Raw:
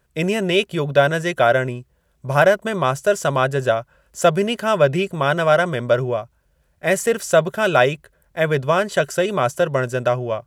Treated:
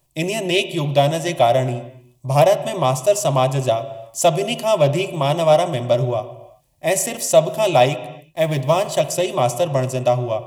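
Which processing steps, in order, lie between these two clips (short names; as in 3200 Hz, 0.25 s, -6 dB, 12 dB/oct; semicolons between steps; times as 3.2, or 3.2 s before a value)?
7.92–9 G.711 law mismatch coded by A; high shelf 4800 Hz +6 dB; fixed phaser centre 300 Hz, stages 8; on a send at -10 dB: reverb, pre-delay 3 ms; on the sum: Doppler distortion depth 0.12 ms; gain +3 dB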